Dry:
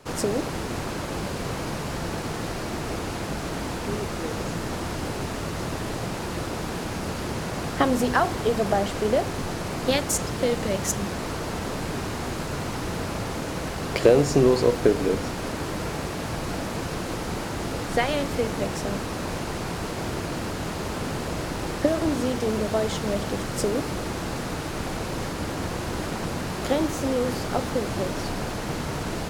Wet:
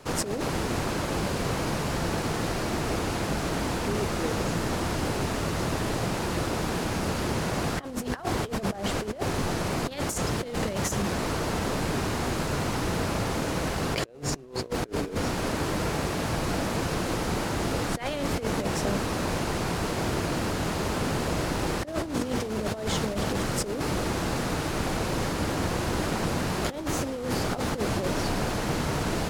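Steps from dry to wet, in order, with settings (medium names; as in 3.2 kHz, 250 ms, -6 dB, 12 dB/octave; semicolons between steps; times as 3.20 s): compressor with a negative ratio -27 dBFS, ratio -0.5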